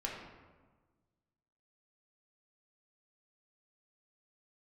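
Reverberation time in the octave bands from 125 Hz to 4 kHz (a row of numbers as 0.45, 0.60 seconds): 1.9, 1.7, 1.4, 1.3, 1.1, 0.80 seconds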